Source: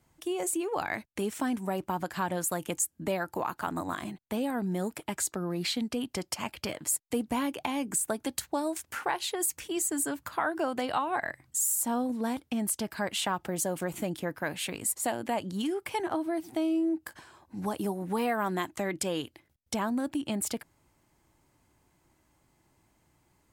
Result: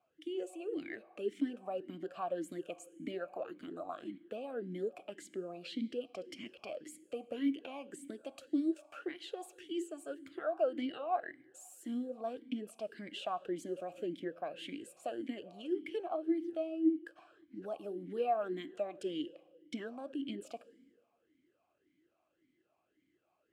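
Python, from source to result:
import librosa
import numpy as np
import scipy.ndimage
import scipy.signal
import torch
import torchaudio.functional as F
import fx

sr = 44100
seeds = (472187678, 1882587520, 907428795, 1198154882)

y = fx.dynamic_eq(x, sr, hz=1500.0, q=0.91, threshold_db=-47.0, ratio=4.0, max_db=-6)
y = fx.rev_fdn(y, sr, rt60_s=1.6, lf_ratio=1.0, hf_ratio=0.65, size_ms=18.0, drr_db=15.5)
y = fx.vowel_sweep(y, sr, vowels='a-i', hz=1.8)
y = y * librosa.db_to_amplitude(4.0)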